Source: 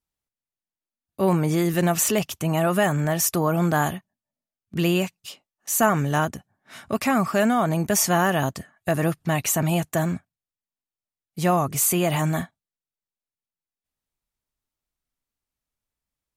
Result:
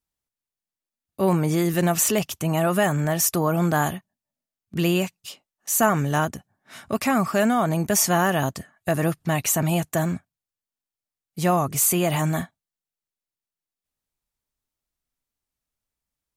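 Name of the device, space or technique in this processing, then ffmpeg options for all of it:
exciter from parts: -filter_complex "[0:a]asplit=2[s0][s1];[s1]highpass=3500,asoftclip=type=tanh:threshold=0.15,volume=0.211[s2];[s0][s2]amix=inputs=2:normalize=0"

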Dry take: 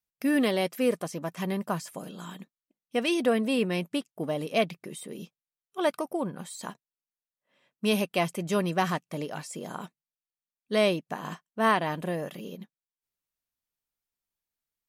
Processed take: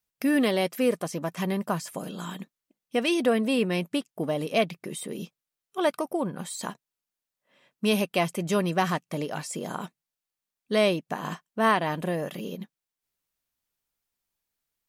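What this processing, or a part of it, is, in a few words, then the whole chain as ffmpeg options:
parallel compression: -filter_complex "[0:a]asplit=2[s0][s1];[s1]acompressor=threshold=0.0141:ratio=6,volume=0.944[s2];[s0][s2]amix=inputs=2:normalize=0"

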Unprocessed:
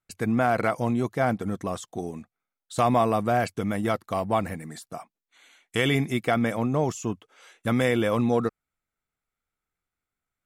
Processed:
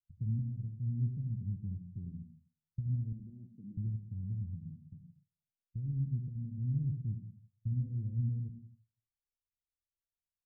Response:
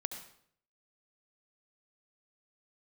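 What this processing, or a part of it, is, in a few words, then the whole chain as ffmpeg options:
club heard from the street: -filter_complex "[0:a]asettb=1/sr,asplit=3[s0][s1][s2];[s0]atrim=end=3.124[s3];[s1]atrim=start=3.12:end=3.77,asetpts=PTS-STARTPTS,afade=t=in:d=0.004:c=qsin,afade=t=out:st=0.646:d=0.004:c=qsin,highpass=f=220:w=0.5412,highpass=f=220:w=1.3066[s4];[s2]atrim=start=3.766[s5];[s3][s4]acrossfade=d=0.004:c1=hsin:c2=qsin[s6];[s6][s5]acrossfade=d=0.004:c1=qsin:c2=hsin,alimiter=limit=0.158:level=0:latency=1:release=487,lowpass=f=130:w=0.5412,lowpass=f=130:w=1.3066[s7];[1:a]atrim=start_sample=2205[s8];[s7][s8]afir=irnorm=-1:irlink=0,afftdn=nr=16:nf=-58,volume=1.5"

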